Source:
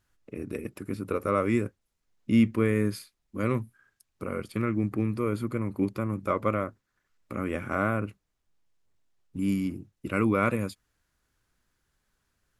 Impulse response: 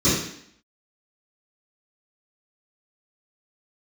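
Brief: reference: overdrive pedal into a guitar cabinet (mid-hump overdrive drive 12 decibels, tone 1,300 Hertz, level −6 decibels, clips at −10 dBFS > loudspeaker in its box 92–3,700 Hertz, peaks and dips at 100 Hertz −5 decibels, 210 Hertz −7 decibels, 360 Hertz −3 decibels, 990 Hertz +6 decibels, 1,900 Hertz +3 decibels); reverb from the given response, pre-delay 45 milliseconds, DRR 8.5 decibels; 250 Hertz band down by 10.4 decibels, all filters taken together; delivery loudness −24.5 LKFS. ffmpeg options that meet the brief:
-filter_complex "[0:a]equalizer=frequency=250:width_type=o:gain=-8,asplit=2[link_01][link_02];[1:a]atrim=start_sample=2205,adelay=45[link_03];[link_02][link_03]afir=irnorm=-1:irlink=0,volume=-26.5dB[link_04];[link_01][link_04]amix=inputs=2:normalize=0,asplit=2[link_05][link_06];[link_06]highpass=frequency=720:poles=1,volume=12dB,asoftclip=type=tanh:threshold=-10dB[link_07];[link_05][link_07]amix=inputs=2:normalize=0,lowpass=frequency=1300:poles=1,volume=-6dB,highpass=92,equalizer=frequency=100:width_type=q:width=4:gain=-5,equalizer=frequency=210:width_type=q:width=4:gain=-7,equalizer=frequency=360:width_type=q:width=4:gain=-3,equalizer=frequency=990:width_type=q:width=4:gain=6,equalizer=frequency=1900:width_type=q:width=4:gain=3,lowpass=frequency=3700:width=0.5412,lowpass=frequency=3700:width=1.3066,volume=5.5dB"

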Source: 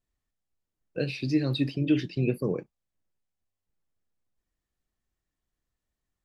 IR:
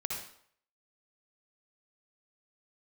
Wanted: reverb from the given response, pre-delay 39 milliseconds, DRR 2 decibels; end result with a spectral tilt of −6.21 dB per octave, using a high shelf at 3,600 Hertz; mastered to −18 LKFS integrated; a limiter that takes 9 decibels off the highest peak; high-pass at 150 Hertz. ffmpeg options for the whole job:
-filter_complex "[0:a]highpass=150,highshelf=frequency=3600:gain=-4.5,alimiter=limit=-22.5dB:level=0:latency=1,asplit=2[link_01][link_02];[1:a]atrim=start_sample=2205,adelay=39[link_03];[link_02][link_03]afir=irnorm=-1:irlink=0,volume=-5dB[link_04];[link_01][link_04]amix=inputs=2:normalize=0,volume=13dB"

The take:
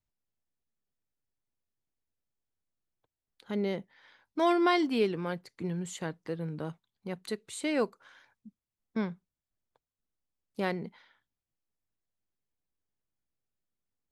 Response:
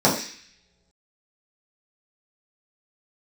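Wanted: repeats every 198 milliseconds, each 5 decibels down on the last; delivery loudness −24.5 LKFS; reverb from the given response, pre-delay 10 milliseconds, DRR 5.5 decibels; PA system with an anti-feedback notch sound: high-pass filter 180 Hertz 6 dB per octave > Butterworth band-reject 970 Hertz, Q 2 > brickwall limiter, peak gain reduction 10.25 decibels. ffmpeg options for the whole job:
-filter_complex "[0:a]aecho=1:1:198|396|594|792|990|1188|1386:0.562|0.315|0.176|0.0988|0.0553|0.031|0.0173,asplit=2[link_01][link_02];[1:a]atrim=start_sample=2205,adelay=10[link_03];[link_02][link_03]afir=irnorm=-1:irlink=0,volume=-25.5dB[link_04];[link_01][link_04]amix=inputs=2:normalize=0,highpass=frequency=180:poles=1,asuperstop=centerf=970:order=8:qfactor=2,volume=10dB,alimiter=limit=-13dB:level=0:latency=1"

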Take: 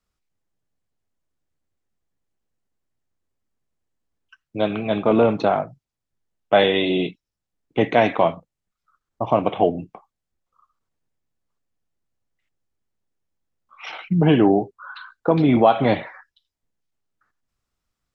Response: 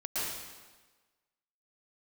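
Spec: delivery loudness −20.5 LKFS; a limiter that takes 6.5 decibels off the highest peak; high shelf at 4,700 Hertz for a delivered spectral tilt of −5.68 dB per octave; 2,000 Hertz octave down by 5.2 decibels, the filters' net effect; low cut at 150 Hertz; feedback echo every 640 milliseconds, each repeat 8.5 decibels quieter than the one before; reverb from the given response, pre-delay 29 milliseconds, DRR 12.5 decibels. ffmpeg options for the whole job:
-filter_complex "[0:a]highpass=150,equalizer=frequency=2000:width_type=o:gain=-6,highshelf=frequency=4700:gain=-4,alimiter=limit=-9dB:level=0:latency=1,aecho=1:1:640|1280|1920|2560:0.376|0.143|0.0543|0.0206,asplit=2[link_01][link_02];[1:a]atrim=start_sample=2205,adelay=29[link_03];[link_02][link_03]afir=irnorm=-1:irlink=0,volume=-18.5dB[link_04];[link_01][link_04]amix=inputs=2:normalize=0,volume=2.5dB"

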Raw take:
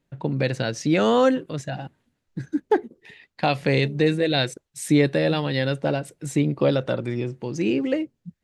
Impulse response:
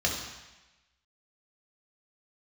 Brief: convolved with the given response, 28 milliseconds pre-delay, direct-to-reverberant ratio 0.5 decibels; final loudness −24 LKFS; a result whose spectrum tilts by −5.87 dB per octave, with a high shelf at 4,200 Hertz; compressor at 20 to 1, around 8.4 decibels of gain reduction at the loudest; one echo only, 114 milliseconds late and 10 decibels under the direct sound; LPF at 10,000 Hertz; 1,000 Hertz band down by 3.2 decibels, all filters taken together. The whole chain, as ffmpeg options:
-filter_complex "[0:a]lowpass=10000,equalizer=frequency=1000:width_type=o:gain=-4.5,highshelf=frequency=4200:gain=-3,acompressor=threshold=-22dB:ratio=20,aecho=1:1:114:0.316,asplit=2[link_01][link_02];[1:a]atrim=start_sample=2205,adelay=28[link_03];[link_02][link_03]afir=irnorm=-1:irlink=0,volume=-10.5dB[link_04];[link_01][link_04]amix=inputs=2:normalize=0,volume=1.5dB"

